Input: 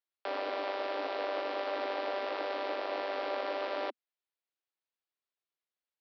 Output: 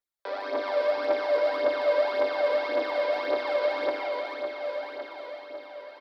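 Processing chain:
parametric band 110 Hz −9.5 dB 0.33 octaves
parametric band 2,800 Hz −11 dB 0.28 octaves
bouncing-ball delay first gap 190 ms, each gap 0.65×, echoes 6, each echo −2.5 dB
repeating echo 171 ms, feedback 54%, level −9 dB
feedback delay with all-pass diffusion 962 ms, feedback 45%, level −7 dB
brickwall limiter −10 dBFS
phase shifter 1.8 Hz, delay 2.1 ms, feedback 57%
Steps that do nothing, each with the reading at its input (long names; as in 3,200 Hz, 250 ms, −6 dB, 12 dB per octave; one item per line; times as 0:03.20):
parametric band 110 Hz: nothing at its input below 240 Hz
brickwall limiter −10 dBFS: peak of its input −17.5 dBFS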